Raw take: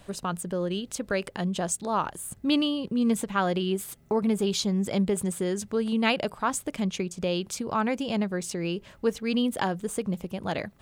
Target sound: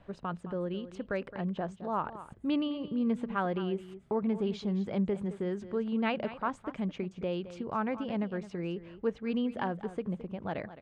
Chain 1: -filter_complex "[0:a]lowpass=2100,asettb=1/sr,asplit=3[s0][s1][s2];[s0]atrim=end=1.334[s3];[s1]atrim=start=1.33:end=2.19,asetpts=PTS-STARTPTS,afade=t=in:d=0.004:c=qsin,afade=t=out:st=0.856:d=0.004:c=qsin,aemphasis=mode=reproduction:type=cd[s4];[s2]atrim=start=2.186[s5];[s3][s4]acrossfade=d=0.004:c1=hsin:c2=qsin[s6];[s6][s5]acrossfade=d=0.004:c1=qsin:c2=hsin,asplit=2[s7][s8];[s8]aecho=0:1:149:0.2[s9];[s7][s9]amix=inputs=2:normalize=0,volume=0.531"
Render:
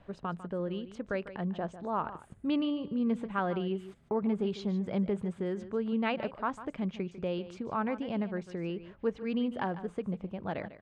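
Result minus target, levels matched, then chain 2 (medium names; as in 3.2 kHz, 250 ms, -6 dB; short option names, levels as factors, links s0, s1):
echo 67 ms early
-filter_complex "[0:a]lowpass=2100,asettb=1/sr,asplit=3[s0][s1][s2];[s0]atrim=end=1.334[s3];[s1]atrim=start=1.33:end=2.19,asetpts=PTS-STARTPTS,afade=t=in:d=0.004:c=qsin,afade=t=out:st=0.856:d=0.004:c=qsin,aemphasis=mode=reproduction:type=cd[s4];[s2]atrim=start=2.186[s5];[s3][s4]acrossfade=d=0.004:c1=hsin:c2=qsin[s6];[s6][s5]acrossfade=d=0.004:c1=qsin:c2=hsin,asplit=2[s7][s8];[s8]aecho=0:1:216:0.2[s9];[s7][s9]amix=inputs=2:normalize=0,volume=0.531"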